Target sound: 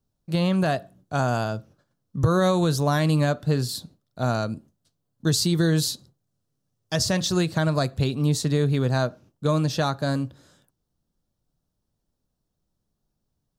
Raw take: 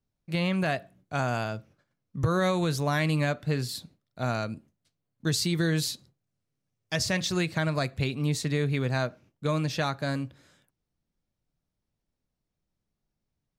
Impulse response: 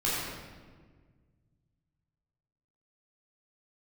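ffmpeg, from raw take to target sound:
-af "equalizer=frequency=2200:width=2.1:gain=-12,volume=5.5dB"

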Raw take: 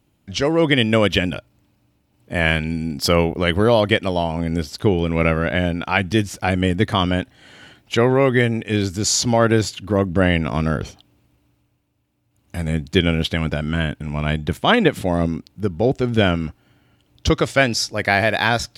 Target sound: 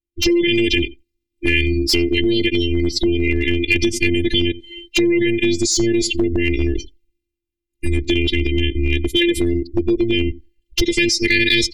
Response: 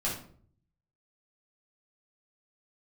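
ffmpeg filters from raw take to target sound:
-filter_complex "[0:a]atempo=1.6,afftfilt=real='hypot(re,im)*cos(PI*b)':imag='0':win_size=512:overlap=0.75,asuperstop=centerf=980:order=20:qfactor=0.75,asplit=2[link_01][link_02];[link_02]adelay=88,lowpass=frequency=4300:poles=1,volume=-21dB,asplit=2[link_03][link_04];[link_04]adelay=88,lowpass=frequency=4300:poles=1,volume=0.19[link_05];[link_03][link_05]amix=inputs=2:normalize=0[link_06];[link_01][link_06]amix=inputs=2:normalize=0,alimiter=limit=-18dB:level=0:latency=1:release=24,dynaudnorm=framelen=120:gausssize=3:maxgain=12.5dB,asplit=2[link_07][link_08];[link_08]asoftclip=type=tanh:threshold=-15dB,volume=-11.5dB[link_09];[link_07][link_09]amix=inputs=2:normalize=0,afftdn=noise_reduction=29:noise_floor=-27,equalizer=frequency=69:width=0.6:gain=10.5,acompressor=threshold=-16dB:ratio=8,asoftclip=type=hard:threshold=-11.5dB,adynamicequalizer=threshold=0.0126:dfrequency=2000:dqfactor=0.7:tfrequency=2000:tqfactor=0.7:attack=5:release=100:ratio=0.375:range=2:mode=boostabove:tftype=highshelf,volume=2.5dB"

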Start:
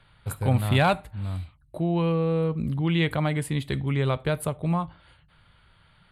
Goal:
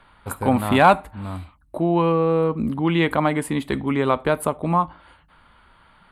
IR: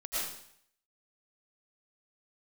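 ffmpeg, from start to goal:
-af "equalizer=frequency=125:width_type=o:width=1:gain=-12,equalizer=frequency=250:width_type=o:width=1:gain=8,equalizer=frequency=1000:width_type=o:width=1:gain=8,equalizer=frequency=4000:width_type=o:width=1:gain=-4,volume=4dB"

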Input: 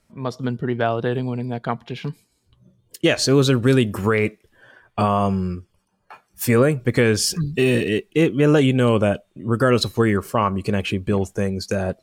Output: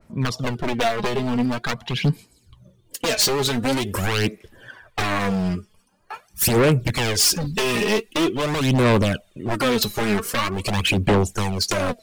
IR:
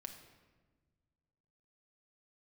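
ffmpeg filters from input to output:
-af "acompressor=threshold=-20dB:ratio=12,aeval=exprs='0.0794*(abs(mod(val(0)/0.0794+3,4)-2)-1)':channel_layout=same,aphaser=in_gain=1:out_gain=1:delay=4.9:decay=0.58:speed=0.45:type=sinusoidal,adynamicequalizer=threshold=0.00708:dfrequency=2000:dqfactor=0.7:tfrequency=2000:tqfactor=0.7:attack=5:release=100:ratio=0.375:range=2.5:mode=boostabove:tftype=highshelf,volume=4dB"

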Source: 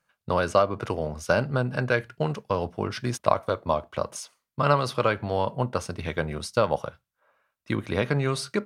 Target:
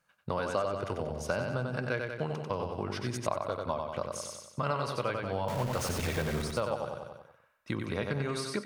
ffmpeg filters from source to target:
ffmpeg -i in.wav -filter_complex "[0:a]asettb=1/sr,asplit=3[link_01][link_02][link_03];[link_01]atrim=end=5.484[link_04];[link_02]atrim=start=5.48:end=6.42,asetpts=PTS-STARTPTS,afade=type=in:duration=0.004:curve=qsin,afade=type=out:start_time=0.936:duration=0.004:curve=qsin,aeval=exprs='val(0)+0.5*0.0631*sgn(val(0))':channel_layout=same[link_05];[link_03]atrim=start=6.416[link_06];[link_04][link_05]acrossfade=duration=0.004:curve1=hsin:curve2=qsin[link_07];[link_07][link_06]acrossfade=duration=0.004:curve1=qsin:curve2=hsin,asplit=2[link_08][link_09];[link_09]aecho=0:1:93|186|279|372|465|558:0.562|0.27|0.13|0.0622|0.0299|0.0143[link_10];[link_08][link_10]amix=inputs=2:normalize=0,acompressor=threshold=-36dB:ratio=2" out.wav

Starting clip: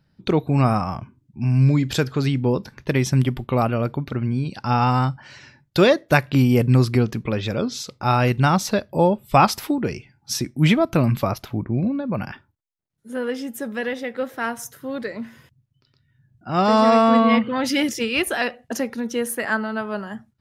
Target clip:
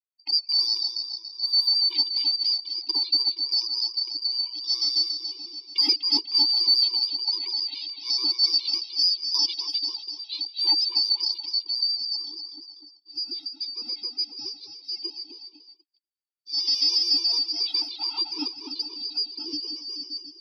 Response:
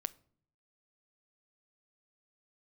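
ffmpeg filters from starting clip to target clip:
-filter_complex "[0:a]afftfilt=real='real(if(lt(b,272),68*(eq(floor(b/68),0)*1+eq(floor(b/68),1)*2+eq(floor(b/68),2)*3+eq(floor(b/68),3)*0)+mod(b,68),b),0)':imag='imag(if(lt(b,272),68*(eq(floor(b/68),0)*1+eq(floor(b/68),1)*2+eq(floor(b/68),2)*3+eq(floor(b/68),3)*0)+mod(b,68),b),0)':win_size=2048:overlap=0.75,asplit=3[link_01][link_02][link_03];[link_01]bandpass=frequency=300:width_type=q:width=8,volume=0dB[link_04];[link_02]bandpass=frequency=870:width_type=q:width=8,volume=-6dB[link_05];[link_03]bandpass=frequency=2240:width_type=q:width=8,volume=-9dB[link_06];[link_04][link_05][link_06]amix=inputs=3:normalize=0,equalizer=frequency=110:width_type=o:width=0.41:gain=3.5,asplit=2[link_07][link_08];[link_08]aecho=0:1:248|496|744|992|1240|1488:0.422|0.202|0.0972|0.0466|0.0224|0.0107[link_09];[link_07][link_09]amix=inputs=2:normalize=0,aresample=11025,aresample=44100,aexciter=amount=12.4:drive=8.1:freq=3300,agate=range=-42dB:threshold=-46dB:ratio=16:detection=peak,lowshelf=frequency=250:width_type=q:width=3:gain=-9.5,afftfilt=real='re*gt(sin(2*PI*7*pts/sr)*(1-2*mod(floor(b*sr/1024/310),2)),0)':imag='im*gt(sin(2*PI*7*pts/sr)*(1-2*mod(floor(b*sr/1024/310),2)),0)':win_size=1024:overlap=0.75"

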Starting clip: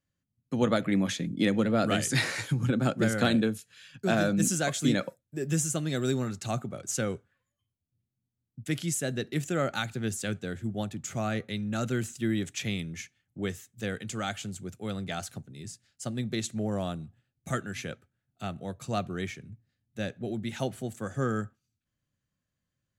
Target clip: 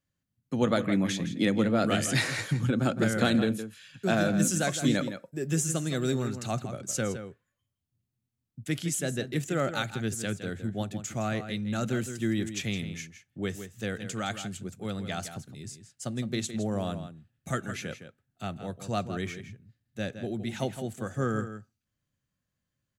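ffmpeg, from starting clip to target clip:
ffmpeg -i in.wav -filter_complex "[0:a]asplit=2[link_01][link_02];[link_02]adelay=163.3,volume=-10dB,highshelf=frequency=4000:gain=-3.67[link_03];[link_01][link_03]amix=inputs=2:normalize=0" out.wav

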